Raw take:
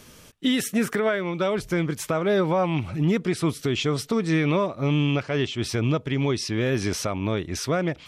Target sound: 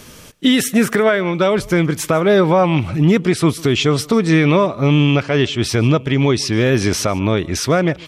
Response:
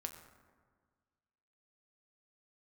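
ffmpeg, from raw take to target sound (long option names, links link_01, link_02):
-af "aecho=1:1:148:0.0668,volume=9dB"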